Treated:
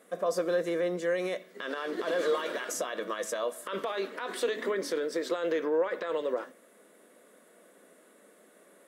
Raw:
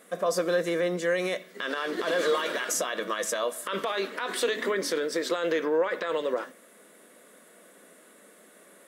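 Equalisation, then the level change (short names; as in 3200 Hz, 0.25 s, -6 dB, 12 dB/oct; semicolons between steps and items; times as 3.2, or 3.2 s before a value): HPF 420 Hz 6 dB/oct; tilt shelf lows +5.5 dB, about 750 Hz; -2.0 dB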